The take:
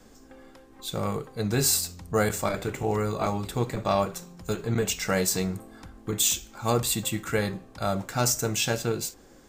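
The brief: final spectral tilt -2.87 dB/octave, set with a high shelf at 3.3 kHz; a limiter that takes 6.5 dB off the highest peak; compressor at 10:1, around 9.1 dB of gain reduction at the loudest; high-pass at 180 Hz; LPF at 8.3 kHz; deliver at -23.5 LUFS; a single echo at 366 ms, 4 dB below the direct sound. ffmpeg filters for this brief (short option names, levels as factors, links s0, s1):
-af "highpass=180,lowpass=8300,highshelf=f=3300:g=6,acompressor=threshold=0.0447:ratio=10,alimiter=limit=0.0841:level=0:latency=1,aecho=1:1:366:0.631,volume=2.82"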